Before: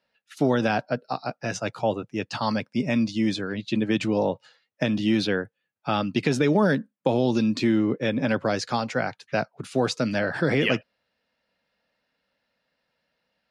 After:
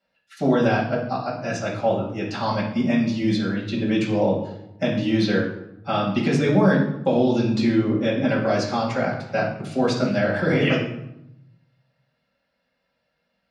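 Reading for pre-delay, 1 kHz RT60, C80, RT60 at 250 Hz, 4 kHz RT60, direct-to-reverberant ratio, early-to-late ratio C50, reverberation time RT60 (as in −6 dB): 5 ms, 0.80 s, 8.5 dB, 1.1 s, 0.55 s, −5.0 dB, 5.0 dB, 0.85 s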